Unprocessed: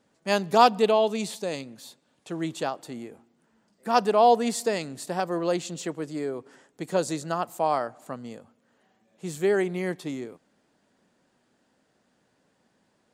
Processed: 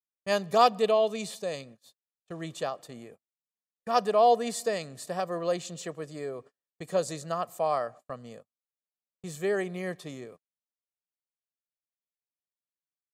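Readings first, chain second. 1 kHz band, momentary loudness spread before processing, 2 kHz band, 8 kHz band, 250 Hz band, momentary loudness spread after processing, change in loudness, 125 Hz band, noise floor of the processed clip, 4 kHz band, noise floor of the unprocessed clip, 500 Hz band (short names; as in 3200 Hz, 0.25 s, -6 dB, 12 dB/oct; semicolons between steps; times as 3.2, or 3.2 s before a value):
-3.5 dB, 20 LU, -4.5 dB, -3.5 dB, -7.5 dB, 22 LU, -3.0 dB, -4.5 dB, under -85 dBFS, -3.5 dB, -70 dBFS, -2.5 dB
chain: gate -43 dBFS, range -42 dB; comb 1.7 ms, depth 52%; gain -4.5 dB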